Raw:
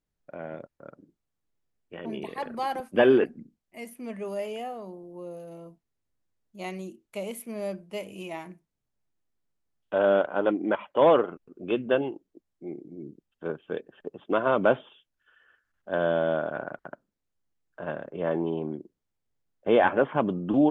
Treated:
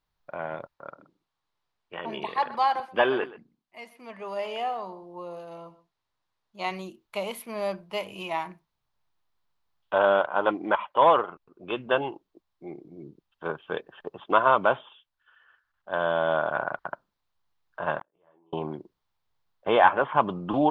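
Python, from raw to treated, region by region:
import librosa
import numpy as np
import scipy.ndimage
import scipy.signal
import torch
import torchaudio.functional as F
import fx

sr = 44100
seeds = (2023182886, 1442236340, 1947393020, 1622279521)

y = fx.chain(x, sr, fx.lowpass(hz=8600.0, slope=12),
    fx.low_shelf(hz=120.0, db=-9.5),
    fx.echo_single(ms=126, db=-17.0), at=(0.74, 6.71))
y = fx.chain(y, sr, fx.peak_eq(hz=330.0, db=8.0, octaves=0.29),
    fx.gate_flip(shuts_db=-30.0, range_db=-36),
    fx.detune_double(cents=35), at=(17.99, 18.53))
y = fx.graphic_eq_10(y, sr, hz=(250, 500, 1000, 4000, 8000), db=(-7, -3, 11, 8, -8))
y = fx.rider(y, sr, range_db=3, speed_s=0.5)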